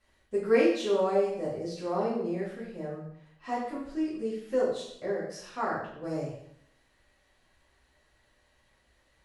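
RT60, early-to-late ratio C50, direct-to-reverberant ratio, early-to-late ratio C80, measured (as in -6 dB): 0.70 s, 3.0 dB, -9.0 dB, 6.0 dB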